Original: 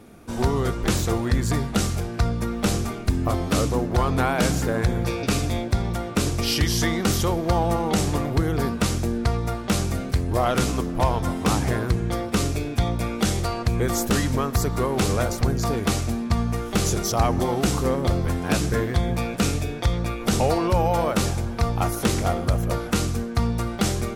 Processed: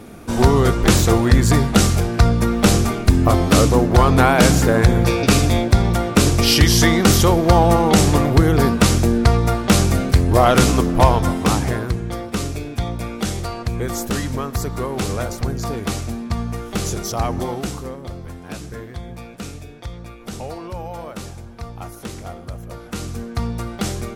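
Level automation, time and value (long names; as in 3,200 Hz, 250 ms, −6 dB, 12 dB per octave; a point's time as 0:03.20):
0:11.03 +8.5 dB
0:12.05 −1 dB
0:17.48 −1 dB
0:17.98 −10 dB
0:22.70 −10 dB
0:23.27 −1 dB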